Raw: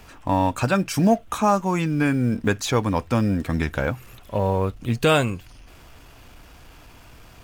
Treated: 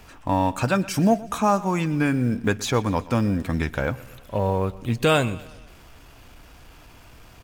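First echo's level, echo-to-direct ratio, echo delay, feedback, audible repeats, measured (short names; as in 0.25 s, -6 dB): -19.5 dB, -18.0 dB, 0.121 s, 53%, 3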